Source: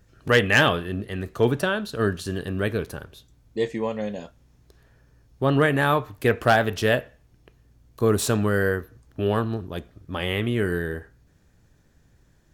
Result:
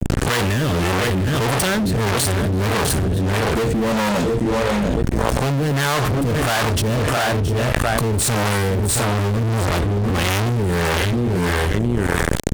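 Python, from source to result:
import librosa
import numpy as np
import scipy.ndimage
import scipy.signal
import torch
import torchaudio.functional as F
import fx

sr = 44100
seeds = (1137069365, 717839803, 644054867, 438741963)

y = fx.low_shelf(x, sr, hz=260.0, db=12.0)
y = y + 10.0 ** (-13.0 / 20.0) * np.pad(y, (int(707 * sr / 1000.0), 0))[:len(y)]
y = fx.leveller(y, sr, passes=1)
y = fx.peak_eq(y, sr, hz=8700.0, db=11.0, octaves=0.32)
y = y + 10.0 ** (-17.5 / 20.0) * np.pad(y, (int(668 * sr / 1000.0), 0))[:len(y)]
y = fx.fuzz(y, sr, gain_db=37.0, gate_db=-45.0)
y = fx.harmonic_tremolo(y, sr, hz=1.6, depth_pct=70, crossover_hz=560.0)
y = fx.env_flatten(y, sr, amount_pct=100)
y = F.gain(torch.from_numpy(y), -4.5).numpy()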